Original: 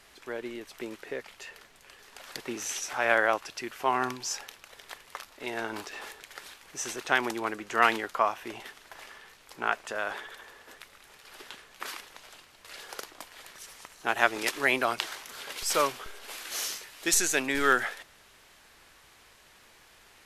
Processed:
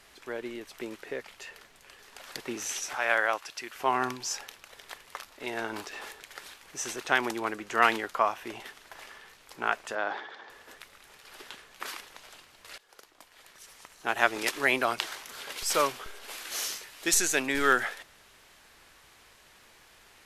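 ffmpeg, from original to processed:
-filter_complex "[0:a]asettb=1/sr,asplit=3[a][b][c];[a]atrim=end=2.954[d];[b]atrim=start=2.95:end=3.75,asetpts=PTS-STARTPTS,afade=t=in:d=0.004:c=qsin,afade=t=out:st=0.796:d=0.004:c=qsin,lowshelf=f=440:g=-11.5[e];[c]atrim=start=3.746[f];[d][e]acrossfade=d=0.004:c1=hsin:c2=qsin[g];[g][f]acrossfade=d=0.004:c1=qsin:c2=hsin,asettb=1/sr,asplit=3[h][i][j];[h]atrim=end=9.954[k];[i]atrim=start=9.95:end=10.5,asetpts=PTS-STARTPTS,afade=t=in:d=0.004:c=qsin,afade=t=out:st=0.546:d=0.004:c=qsin,highpass=160,equalizer=f=310:t=q:w=4:g=5,equalizer=f=800:t=q:w=4:g=7,equalizer=f=2.7k:t=q:w=4:g=-5,lowpass=f=5k:w=0.5412,lowpass=f=5k:w=1.3066[l];[j]atrim=start=10.496[m];[k][l]acrossfade=d=0.004:c1=hsin:c2=qsin[n];[n][m]acrossfade=d=0.004:c1=qsin:c2=hsin,asplit=2[o][p];[o]atrim=end=12.78,asetpts=PTS-STARTPTS,afade=t=out:st=12.776:d=0.004:c=hsin:silence=0.0794328[q];[p]atrim=start=12.78,asetpts=PTS-STARTPTS,afade=t=in:d=1.54:silence=0.0794328[r];[q][r]concat=n=2:v=0:a=1"

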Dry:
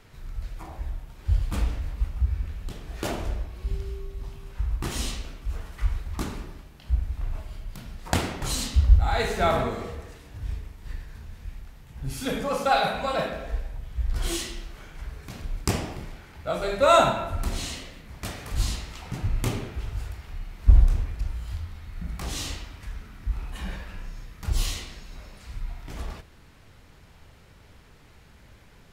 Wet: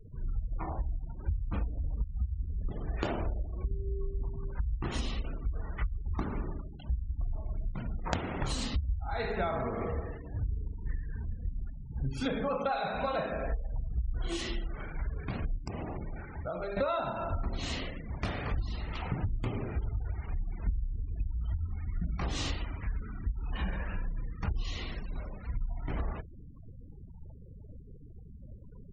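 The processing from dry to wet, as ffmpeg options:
-filter_complex "[0:a]asettb=1/sr,asplit=3[a][b][c];[a]atrim=end=15.584[d];[b]atrim=start=15.58:end=16.77,asetpts=PTS-STARTPTS,afade=t=in:d=0.004:c=qsin,afade=t=out:st=1.186:d=0.004:c=qsin,acompressor=threshold=-38dB:ratio=6:attack=3.2:release=140:knee=1:detection=peak[e];[c]atrim=start=16.766[f];[d][e]acrossfade=d=0.004:c1=hsin:c2=qsin[g];[g][f]acrossfade=d=0.004:c1=qsin:c2=hsin,highshelf=f=5.2k:g=-11,acompressor=threshold=-33dB:ratio=16,afftfilt=real='re*gte(hypot(re,im),0.00501)':imag='im*gte(hypot(re,im),0.00501)':win_size=1024:overlap=0.75,volume=5dB"

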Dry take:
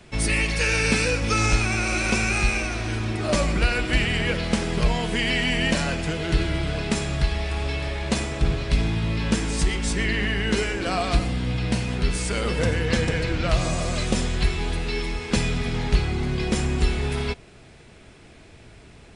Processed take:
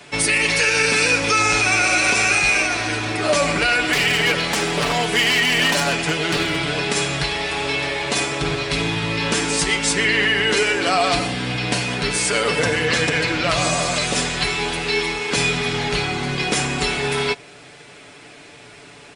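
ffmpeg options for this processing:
-filter_complex "[0:a]asettb=1/sr,asplit=3[a][b][c];[a]atrim=end=3.924[d];[b]atrim=start=3.92:end=6.57,asetpts=PTS-STARTPTS,afade=t=in:d=0.004:c=qsin,afade=t=out:st=2.646:d=0.004:c=qsin,aeval=exprs='0.133*(abs(mod(val(0)/0.133+3,4)-2)-1)':c=same[e];[c]atrim=start=6.566[f];[d][e]acrossfade=d=0.004:c1=hsin:c2=qsin[g];[g][f]acrossfade=d=0.004:c1=qsin:c2=hsin,highpass=f=510:p=1,aecho=1:1:6.9:0.57,alimiter=level_in=16dB:limit=-1dB:release=50:level=0:latency=1,volume=-7dB"

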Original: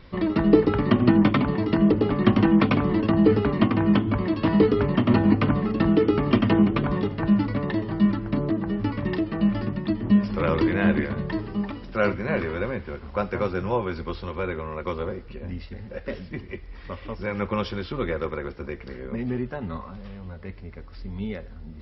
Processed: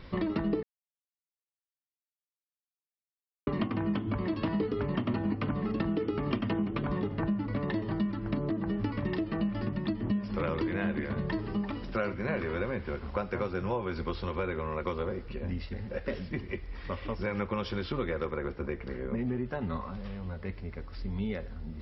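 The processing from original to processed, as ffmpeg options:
-filter_complex "[0:a]asettb=1/sr,asplit=3[a][b][c];[a]atrim=end=7.004[d];[b]atrim=start=7:end=7.53,asetpts=PTS-STARTPTS,afade=t=in:d=0.004:c=qsin,afade=t=out:st=0.526:d=0.004:c=qsin,highshelf=f=4.1k:g=-11.5[e];[c]atrim=start=7.526[f];[d][e]acrossfade=d=0.004:c1=hsin:c2=qsin[g];[g][f]acrossfade=d=0.004:c1=qsin:c2=hsin,asettb=1/sr,asplit=3[h][i][j];[h]atrim=end=18.314[k];[i]atrim=start=18.31:end=19.45,asetpts=PTS-STARTPTS,afade=t=in:d=0.004:c=qsin,afade=t=out:st=1.136:d=0.004:c=qsin,lowpass=f=2.4k:p=1[l];[j]atrim=start=19.446[m];[k][l]acrossfade=d=0.004:c1=hsin:c2=qsin[n];[n][m]acrossfade=d=0.004:c1=qsin:c2=hsin,asplit=3[o][p][q];[o]atrim=end=0.63,asetpts=PTS-STARTPTS,afade=t=out:st=0.626:d=0.004:c=hsin[r];[p]atrim=start=0.63:end=3.47,asetpts=PTS-STARTPTS,volume=0[s];[q]atrim=start=3.47,asetpts=PTS-STARTPTS,afade=t=in:d=0.004:c=hsin[t];[r][s][t]concat=n=3:v=0:a=1,acompressor=threshold=-28dB:ratio=6"

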